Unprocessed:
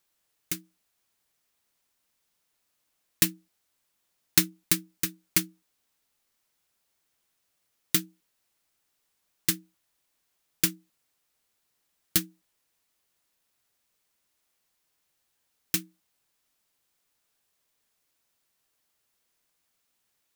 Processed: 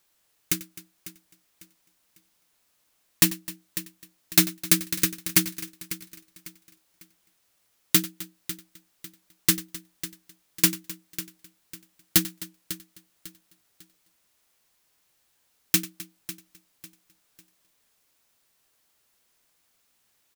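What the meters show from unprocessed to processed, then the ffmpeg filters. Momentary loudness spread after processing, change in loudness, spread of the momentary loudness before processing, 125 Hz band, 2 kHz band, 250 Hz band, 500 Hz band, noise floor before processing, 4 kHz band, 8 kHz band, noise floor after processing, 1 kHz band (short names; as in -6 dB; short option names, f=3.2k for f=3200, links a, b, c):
20 LU, +2.5 dB, 12 LU, +5.0 dB, +4.5 dB, +6.0 dB, +5.0 dB, -77 dBFS, +4.5 dB, +4.5 dB, -70 dBFS, +6.5 dB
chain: -filter_complex "[0:a]asplit=2[a][b];[b]aecho=0:1:549|1098|1647:0.158|0.0539|0.0183[c];[a][c]amix=inputs=2:normalize=0,volume=15.5dB,asoftclip=hard,volume=-15.5dB,asplit=2[d][e];[e]aecho=0:1:93|259:0.126|0.119[f];[d][f]amix=inputs=2:normalize=0,volume=6.5dB"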